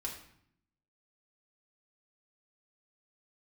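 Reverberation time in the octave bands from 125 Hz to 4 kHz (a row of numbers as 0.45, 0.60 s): 1.0, 1.0, 0.65, 0.65, 0.65, 0.55 s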